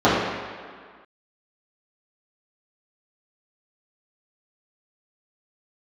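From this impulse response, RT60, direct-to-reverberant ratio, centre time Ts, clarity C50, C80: not exponential, -12.0 dB, 95 ms, -0.5 dB, 2.0 dB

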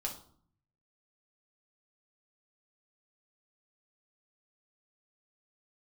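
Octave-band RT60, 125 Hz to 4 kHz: 1.1, 0.80, 0.55, 0.55, 0.40, 0.40 s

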